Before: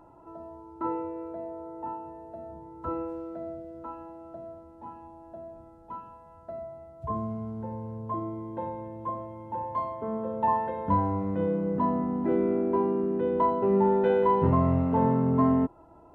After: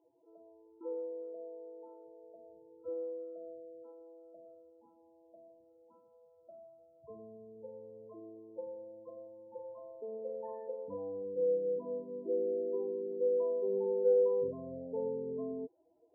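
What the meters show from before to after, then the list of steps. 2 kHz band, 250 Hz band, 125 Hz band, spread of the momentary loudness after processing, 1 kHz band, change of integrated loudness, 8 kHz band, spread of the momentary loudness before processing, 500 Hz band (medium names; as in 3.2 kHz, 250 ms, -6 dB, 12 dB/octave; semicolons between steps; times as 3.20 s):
under -30 dB, -19.0 dB, -27.0 dB, 21 LU, -27.0 dB, -8.5 dB, no reading, 21 LU, -4.5 dB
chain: short-mantissa float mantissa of 2-bit; loudest bins only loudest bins 16; two resonant band-passes 1.2 kHz, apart 2.6 oct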